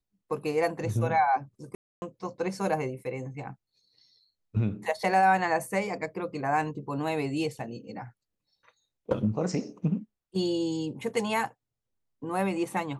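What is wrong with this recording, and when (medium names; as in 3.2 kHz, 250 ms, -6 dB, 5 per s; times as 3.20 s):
1.75–2.02 s: dropout 270 ms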